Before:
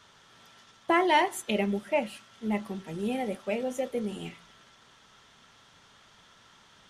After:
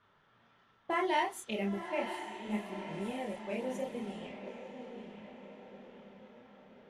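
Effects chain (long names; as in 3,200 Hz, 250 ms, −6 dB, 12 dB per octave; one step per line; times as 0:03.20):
feedback delay with all-pass diffusion 970 ms, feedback 52%, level −8 dB
multi-voice chorus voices 2, 0.67 Hz, delay 30 ms, depth 4.7 ms
low-pass that shuts in the quiet parts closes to 1,900 Hz, open at −28 dBFS
level −5 dB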